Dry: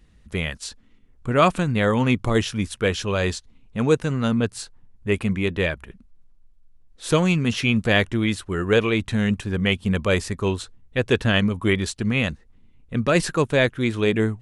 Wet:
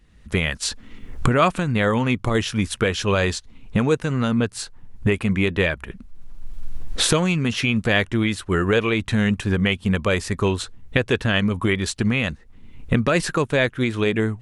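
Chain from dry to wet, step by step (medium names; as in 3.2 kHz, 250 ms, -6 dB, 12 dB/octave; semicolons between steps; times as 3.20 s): recorder AGC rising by 29 dB/s; peaking EQ 1.7 kHz +2.5 dB 1.9 oct; trim -2 dB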